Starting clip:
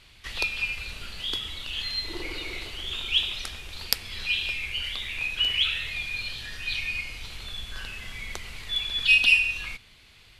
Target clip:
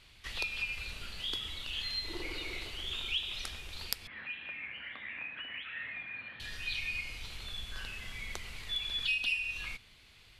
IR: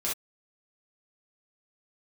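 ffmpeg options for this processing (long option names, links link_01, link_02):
-filter_complex "[0:a]acompressor=threshold=-27dB:ratio=3,asettb=1/sr,asplit=3[link_01][link_02][link_03];[link_01]atrim=end=4.074[link_04];[link_02]atrim=start=4.07:end=6.4,asetpts=PTS-STARTPTS,afade=type=in:duration=0.004:curve=qsin,afade=type=out:start_time=2.326:duration=0.004:curve=qsin,highpass=190,equalizer=frequency=270:width_type=q:width=4:gain=6,equalizer=frequency=400:width_type=q:width=4:gain=-9,equalizer=frequency=1800:width_type=q:width=4:gain=9,lowpass=frequency=2100:width=0.5412,lowpass=frequency=2100:width=1.3066[link_05];[link_03]atrim=start=6.396[link_06];[link_04][link_05]acrossfade=duration=0.004:curve1=hsin:curve2=qsin[link_07];[link_07][link_06]acrossfade=duration=0.004:curve1=qsin:curve2=hsin,volume=-5dB"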